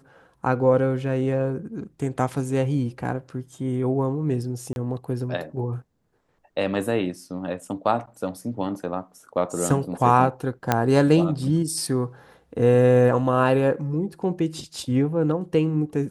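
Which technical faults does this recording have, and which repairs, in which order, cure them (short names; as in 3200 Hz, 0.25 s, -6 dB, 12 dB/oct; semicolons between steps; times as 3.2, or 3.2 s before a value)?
4.73–4.76 gap 31 ms
10.72 pop -5 dBFS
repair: de-click; interpolate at 4.73, 31 ms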